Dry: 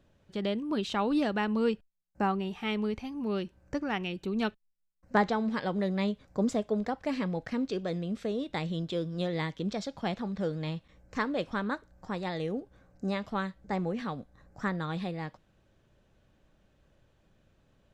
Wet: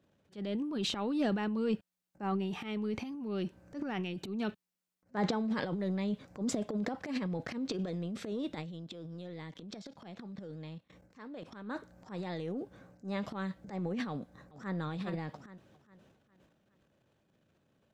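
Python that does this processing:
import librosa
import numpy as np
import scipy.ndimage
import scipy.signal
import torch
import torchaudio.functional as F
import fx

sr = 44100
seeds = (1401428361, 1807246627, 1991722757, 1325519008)

y = fx.level_steps(x, sr, step_db=20, at=(8.55, 11.64), fade=0.02)
y = fx.echo_throw(y, sr, start_s=14.1, length_s=0.65, ms=410, feedback_pct=40, wet_db=-8.0)
y = scipy.signal.sosfilt(scipy.signal.butter(2, 170.0, 'highpass', fs=sr, output='sos'), y)
y = fx.low_shelf(y, sr, hz=240.0, db=8.0)
y = fx.transient(y, sr, attack_db=-11, sustain_db=11)
y = F.gain(torch.from_numpy(y), -6.0).numpy()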